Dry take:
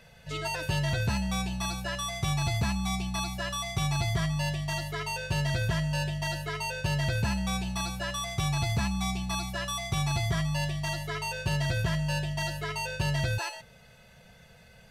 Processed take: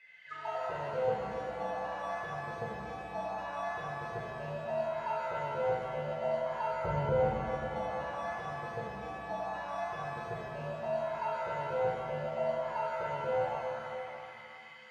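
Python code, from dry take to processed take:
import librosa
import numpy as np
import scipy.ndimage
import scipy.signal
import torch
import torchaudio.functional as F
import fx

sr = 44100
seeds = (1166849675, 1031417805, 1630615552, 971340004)

y = fx.auto_wah(x, sr, base_hz=490.0, top_hz=2200.0, q=11.0, full_db=-26.0, direction='down')
y = fx.tilt_eq(y, sr, slope=-4.5, at=(6.71, 7.12))
y = fx.rev_shimmer(y, sr, seeds[0], rt60_s=2.9, semitones=7, shimmer_db=-8, drr_db=-7.0)
y = y * librosa.db_to_amplitude(6.0)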